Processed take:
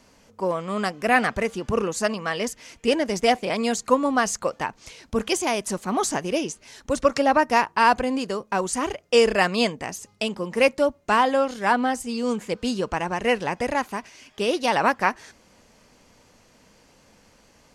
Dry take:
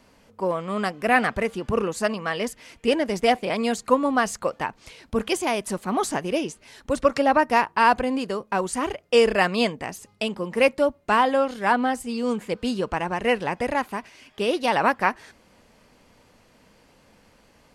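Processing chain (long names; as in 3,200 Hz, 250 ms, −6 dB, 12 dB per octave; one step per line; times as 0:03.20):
parametric band 6,300 Hz +7.5 dB 0.7 octaves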